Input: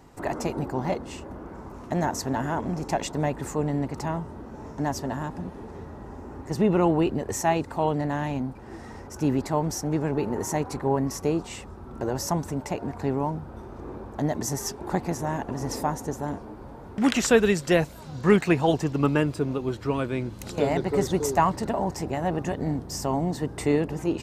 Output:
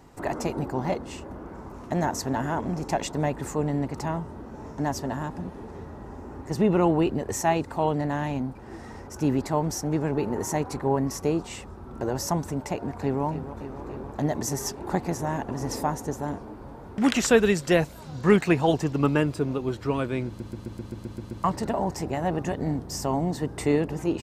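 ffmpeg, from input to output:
-filter_complex "[0:a]asplit=2[s0][s1];[s1]afade=t=in:st=12.73:d=0.01,afade=t=out:st=13.24:d=0.01,aecho=0:1:290|580|870|1160|1450|1740|2030|2320|2610|2900|3190|3480:0.266073|0.226162|0.192237|0.163402|0.138892|0.118058|0.100349|0.0852967|0.0725022|0.0616269|0.0523829|0.0445254[s2];[s0][s2]amix=inputs=2:normalize=0,asplit=10[s3][s4][s5][s6][s7][s8][s9][s10][s11][s12];[s3]atrim=end=20.402[s13];[s4]atrim=start=20.268:end=20.402[s14];[s5]atrim=start=20.268:end=20.402[s15];[s6]atrim=start=20.268:end=20.402[s16];[s7]atrim=start=20.268:end=20.402[s17];[s8]atrim=start=20.268:end=20.402[s18];[s9]atrim=start=20.268:end=20.402[s19];[s10]atrim=start=20.268:end=20.402[s20];[s11]atrim=start=20.268:end=20.402[s21];[s12]atrim=start=21.438[s22];[s13][s14]acrossfade=d=0.004:c1=hsin:c2=hsin[s23];[s23][s15]acrossfade=d=0.004:c1=hsin:c2=hsin[s24];[s24][s16]acrossfade=d=0.004:c1=hsin:c2=hsin[s25];[s25][s17]acrossfade=d=0.004:c1=hsin:c2=hsin[s26];[s26][s18]acrossfade=d=0.004:c1=hsin:c2=hsin[s27];[s27][s19]acrossfade=d=0.004:c1=hsin:c2=hsin[s28];[s28][s20]acrossfade=d=0.004:c1=hsin:c2=hsin[s29];[s29][s21]acrossfade=d=0.004:c1=hsin:c2=hsin[s30];[s30][s22]acrossfade=d=0.004:c1=hsin:c2=hsin"

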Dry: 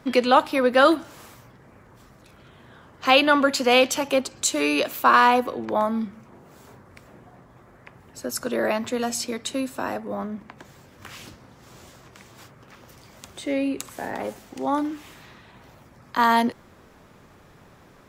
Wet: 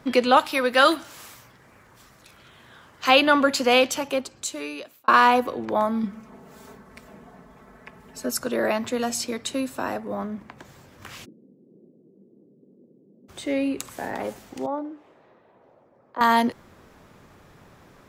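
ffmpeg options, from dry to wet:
-filter_complex "[0:a]asettb=1/sr,asplit=3[s0][s1][s2];[s0]atrim=end=0.374[s3];[s1]atrim=start=0.37:end=3.09,asetpts=PTS-STARTPTS,afade=t=in:d=0.004:c=qsin,afade=t=out:st=2.716:d=0.004:c=qsin,tiltshelf=f=1100:g=-5.5[s4];[s2]atrim=start=3.086[s5];[s3][s4]acrossfade=d=0.004:c1=hsin:c2=qsin[s6];[s6][s5]acrossfade=d=0.004:c1=qsin:c2=hsin,asettb=1/sr,asplit=3[s7][s8][s9];[s7]atrim=end=6.034[s10];[s8]atrim=start=6.03:end=8.37,asetpts=PTS-STARTPTS,afade=t=in:d=0.004:c=qsin,afade=t=out:st=2.336:d=0.004:c=qsin,aecho=1:1:4.6:0.84,atrim=end_sample=103194[s11];[s9]atrim=start=8.366[s12];[s10][s11]acrossfade=d=0.004:c1=hsin:c2=qsin[s13];[s13][s12]acrossfade=d=0.004:c1=qsin:c2=hsin,asplit=3[s14][s15][s16];[s14]afade=t=out:st=11.24:d=0.02[s17];[s15]asuperpass=centerf=280:order=8:qfactor=0.95,afade=t=in:st=11.24:d=0.02,afade=t=out:st=13.28:d=0.02[s18];[s16]afade=t=in:st=13.28:d=0.02[s19];[s17][s18][s19]amix=inputs=3:normalize=0,asettb=1/sr,asplit=3[s20][s21][s22];[s20]atrim=end=14.664[s23];[s21]atrim=start=14.66:end=16.21,asetpts=PTS-STARTPTS,afade=t=in:d=0.004:c=qsin,afade=t=out:st=1.546:d=0.004:c=qsin,bandpass=f=530:t=q:w=1.7[s24];[s22]atrim=start=16.206[s25];[s23][s24]acrossfade=d=0.004:c1=hsin:c2=qsin[s26];[s26][s25]acrossfade=d=0.004:c1=qsin:c2=hsin,asplit=2[s27][s28];[s27]atrim=end=5.08,asetpts=PTS-STARTPTS,afade=t=out:st=3.63:d=1.45[s29];[s28]atrim=start=5.08,asetpts=PTS-STARTPTS,afade=t=in:d=0.004:c=hsin[s30];[s29][s30]concat=n=2:v=0:a=1"

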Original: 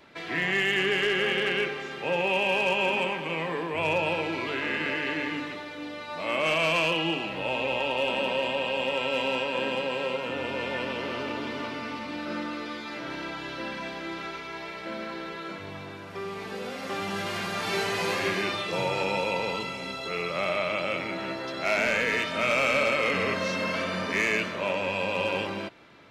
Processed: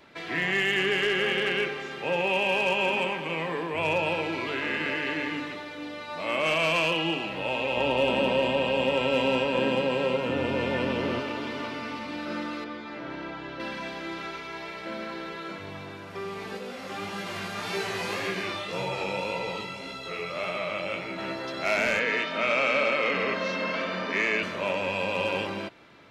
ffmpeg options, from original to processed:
-filter_complex "[0:a]asettb=1/sr,asplit=3[s0][s1][s2];[s0]atrim=end=7.774[s3];[s1]atrim=start=7.77:end=11.2,asetpts=PTS-STARTPTS,afade=t=in:d=0.004:c=qsin,afade=t=out:st=3.426:d=0.004:c=qsin,lowshelf=f=430:g=10[s4];[s2]atrim=start=11.196[s5];[s3][s4]acrossfade=d=0.004:c1=hsin:c2=qsin[s6];[s6][s5]acrossfade=d=0.004:c1=qsin:c2=hsin,asettb=1/sr,asplit=3[s7][s8][s9];[s7]atrim=end=12.644[s10];[s8]atrim=start=12.64:end=13.6,asetpts=PTS-STARTPTS,afade=t=in:d=0.004:c=qsin,afade=t=out:st=0.956:d=0.004:c=qsin,lowpass=f=1700:p=1[s11];[s9]atrim=start=13.596[s12];[s10][s11]acrossfade=d=0.004:c1=hsin:c2=qsin[s13];[s13][s12]acrossfade=d=0.004:c1=qsin:c2=hsin,asplit=3[s14][s15][s16];[s14]afade=t=out:st=16.57:d=0.02[s17];[s15]flanger=delay=15.5:depth=6.1:speed=1.8,afade=t=in:st=16.57:d=0.02,afade=t=out:st=21.17:d=0.02[s18];[s16]afade=t=in:st=21.17:d=0.02[s19];[s17][s18][s19]amix=inputs=3:normalize=0,asettb=1/sr,asplit=3[s20][s21][s22];[s20]atrim=end=21.994[s23];[s21]atrim=start=21.99:end=24.43,asetpts=PTS-STARTPTS,afade=t=in:d=0.004:c=qsin,afade=t=out:st=2.436:d=0.004:c=qsin,highpass=190,lowpass=4500[s24];[s22]atrim=start=24.426[s25];[s23][s24]acrossfade=d=0.004:c1=hsin:c2=qsin[s26];[s26][s25]acrossfade=d=0.004:c1=qsin:c2=hsin"

